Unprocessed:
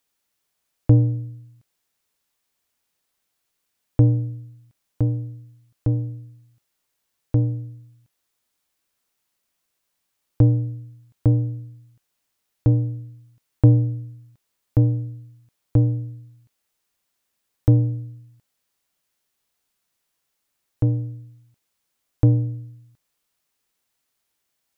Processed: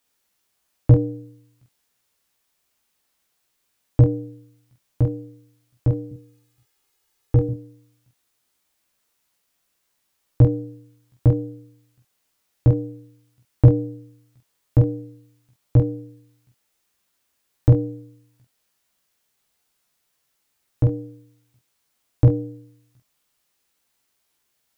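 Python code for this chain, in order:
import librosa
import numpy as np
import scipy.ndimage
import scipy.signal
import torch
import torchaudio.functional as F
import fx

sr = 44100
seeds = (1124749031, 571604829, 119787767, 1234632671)

y = fx.comb(x, sr, ms=2.4, depth=0.65, at=(6.11, 7.49))
y = fx.room_early_taps(y, sr, ms=(15, 46, 70), db=(-3.5, -3.0, -12.5))
y = y * 10.0 ** (1.0 / 20.0)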